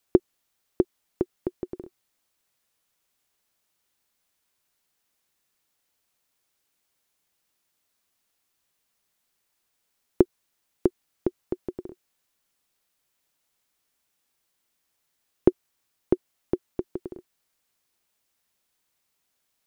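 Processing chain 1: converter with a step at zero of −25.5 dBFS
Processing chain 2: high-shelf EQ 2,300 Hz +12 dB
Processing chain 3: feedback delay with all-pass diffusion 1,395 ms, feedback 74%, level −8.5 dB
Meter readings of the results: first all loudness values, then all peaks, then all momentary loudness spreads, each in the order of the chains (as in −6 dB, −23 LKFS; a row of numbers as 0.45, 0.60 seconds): −28.0, −30.0, −34.0 LKFS; −2.0, −2.0, −2.0 dBFS; 4, 17, 22 LU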